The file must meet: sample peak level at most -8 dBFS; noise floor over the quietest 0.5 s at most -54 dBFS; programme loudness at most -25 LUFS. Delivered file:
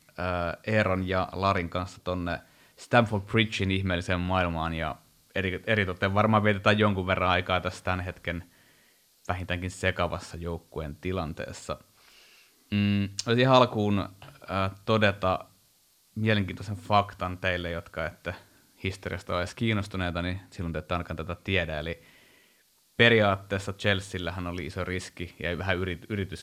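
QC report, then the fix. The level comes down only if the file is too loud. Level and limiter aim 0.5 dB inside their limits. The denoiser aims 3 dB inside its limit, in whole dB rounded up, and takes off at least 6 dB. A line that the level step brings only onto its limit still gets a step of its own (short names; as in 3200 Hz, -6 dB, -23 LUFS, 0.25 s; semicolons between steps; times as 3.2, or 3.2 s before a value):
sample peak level -5.5 dBFS: fail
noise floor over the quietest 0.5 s -64 dBFS: OK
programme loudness -28.0 LUFS: OK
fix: limiter -8.5 dBFS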